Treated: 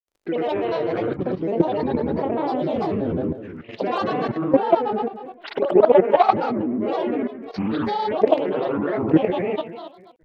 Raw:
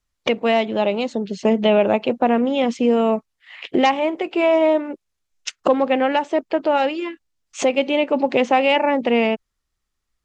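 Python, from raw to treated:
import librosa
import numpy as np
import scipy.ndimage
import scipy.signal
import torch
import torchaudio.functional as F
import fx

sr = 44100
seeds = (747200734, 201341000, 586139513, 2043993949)

y = fx.pitch_trill(x, sr, semitones=-11.5, every_ms=563)
y = fx.rev_spring(y, sr, rt60_s=1.5, pass_ms=(55,), chirp_ms=25, drr_db=-5.0)
y = fx.dmg_crackle(y, sr, seeds[0], per_s=37.0, level_db=-40.0)
y = fx.peak_eq(y, sr, hz=500.0, db=13.5, octaves=1.9)
y = fx.granulator(y, sr, seeds[1], grain_ms=100.0, per_s=20.0, spray_ms=100.0, spread_st=7)
y = fx.high_shelf(y, sr, hz=2800.0, db=5.0)
y = fx.level_steps(y, sr, step_db=12)
y = fx.record_warp(y, sr, rpm=33.33, depth_cents=160.0)
y = y * librosa.db_to_amplitude(-11.0)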